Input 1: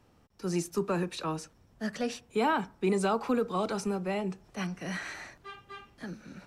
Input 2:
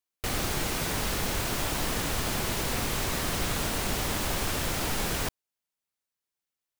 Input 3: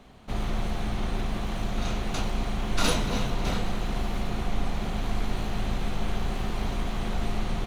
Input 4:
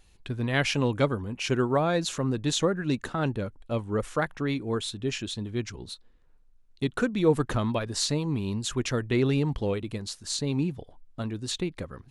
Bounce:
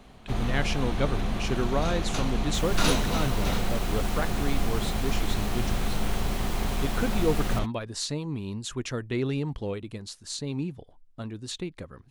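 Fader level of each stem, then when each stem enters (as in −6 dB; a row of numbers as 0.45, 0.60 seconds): muted, −9.0 dB, +0.5 dB, −4.0 dB; muted, 2.30 s, 0.00 s, 0.00 s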